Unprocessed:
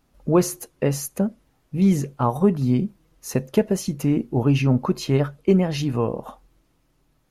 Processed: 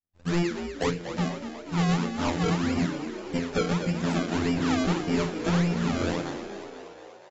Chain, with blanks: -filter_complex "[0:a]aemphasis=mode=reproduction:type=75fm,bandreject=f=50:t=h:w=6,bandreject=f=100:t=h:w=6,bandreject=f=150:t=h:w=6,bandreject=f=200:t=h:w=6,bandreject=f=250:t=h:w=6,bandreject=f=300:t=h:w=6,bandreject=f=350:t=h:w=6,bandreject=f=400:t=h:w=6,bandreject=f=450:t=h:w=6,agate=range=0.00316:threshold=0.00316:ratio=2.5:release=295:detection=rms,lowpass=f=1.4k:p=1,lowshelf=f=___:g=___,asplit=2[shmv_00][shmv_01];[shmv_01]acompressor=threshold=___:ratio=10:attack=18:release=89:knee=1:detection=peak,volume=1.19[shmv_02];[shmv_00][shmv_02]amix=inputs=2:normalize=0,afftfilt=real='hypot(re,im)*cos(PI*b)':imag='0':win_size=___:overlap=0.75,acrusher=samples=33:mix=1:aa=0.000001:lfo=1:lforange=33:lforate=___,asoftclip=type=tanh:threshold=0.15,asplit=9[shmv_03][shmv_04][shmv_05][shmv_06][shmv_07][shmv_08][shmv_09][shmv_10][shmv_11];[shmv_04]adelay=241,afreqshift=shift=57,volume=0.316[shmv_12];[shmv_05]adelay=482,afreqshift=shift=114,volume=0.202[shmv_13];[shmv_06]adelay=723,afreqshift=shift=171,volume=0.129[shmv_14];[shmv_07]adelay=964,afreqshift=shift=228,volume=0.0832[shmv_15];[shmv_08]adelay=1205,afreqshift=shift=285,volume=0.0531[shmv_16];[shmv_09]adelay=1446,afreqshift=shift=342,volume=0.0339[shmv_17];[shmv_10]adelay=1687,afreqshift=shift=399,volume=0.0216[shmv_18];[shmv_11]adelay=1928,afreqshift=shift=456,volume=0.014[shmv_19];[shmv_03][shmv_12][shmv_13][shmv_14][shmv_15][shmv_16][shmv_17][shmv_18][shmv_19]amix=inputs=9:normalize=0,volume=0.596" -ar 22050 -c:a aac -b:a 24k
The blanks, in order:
310, 7, 0.0891, 2048, 1.7